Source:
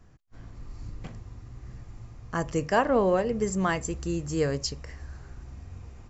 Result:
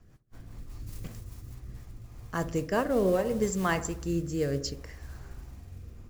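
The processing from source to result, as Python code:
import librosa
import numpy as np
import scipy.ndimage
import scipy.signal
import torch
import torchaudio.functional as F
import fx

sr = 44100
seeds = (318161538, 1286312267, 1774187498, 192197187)

y = fx.mod_noise(x, sr, seeds[0], snr_db=22)
y = fx.high_shelf(y, sr, hz=fx.line((0.86, 3800.0), (1.53, 5200.0)), db=10.0, at=(0.86, 1.53), fade=0.02)
y = fx.echo_wet_lowpass(y, sr, ms=65, feedback_pct=56, hz=1400.0, wet_db=-13)
y = fx.rotary_switch(y, sr, hz=5.0, then_hz=0.65, switch_at_s=1.43)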